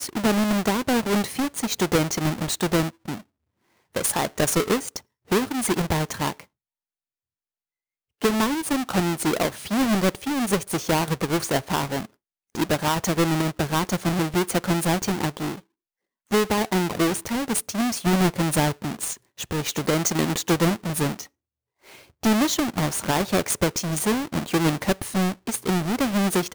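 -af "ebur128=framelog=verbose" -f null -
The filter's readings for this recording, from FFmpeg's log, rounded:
Integrated loudness:
  I:         -23.8 LUFS
  Threshold: -34.2 LUFS
Loudness range:
  LRA:         2.8 LU
  Threshold: -44.7 LUFS
  LRA low:   -26.3 LUFS
  LRA high:  -23.5 LUFS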